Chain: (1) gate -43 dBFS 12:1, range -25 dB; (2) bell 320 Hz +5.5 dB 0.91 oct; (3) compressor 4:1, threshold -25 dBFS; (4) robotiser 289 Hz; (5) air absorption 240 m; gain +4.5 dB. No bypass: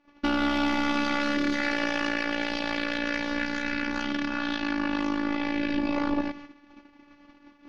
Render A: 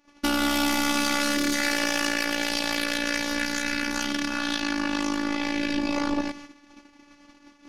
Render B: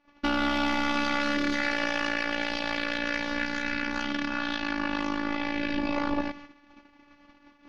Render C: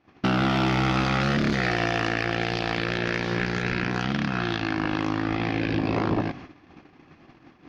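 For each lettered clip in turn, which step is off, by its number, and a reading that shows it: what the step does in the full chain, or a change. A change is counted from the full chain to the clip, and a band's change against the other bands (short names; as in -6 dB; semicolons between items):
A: 5, 4 kHz band +6.0 dB; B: 2, 250 Hz band -3.5 dB; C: 4, 125 Hz band +17.0 dB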